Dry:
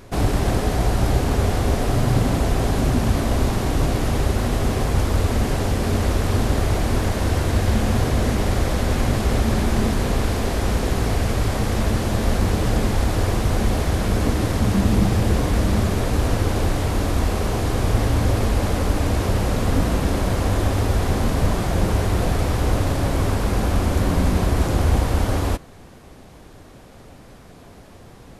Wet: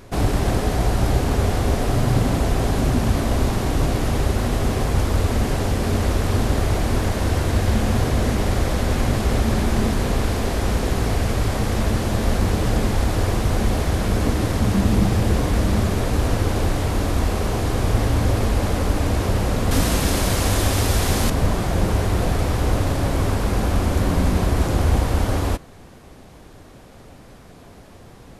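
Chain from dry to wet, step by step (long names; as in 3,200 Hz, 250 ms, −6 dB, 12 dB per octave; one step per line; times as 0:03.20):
0:19.71–0:21.30: high-shelf EQ 2,400 Hz +11 dB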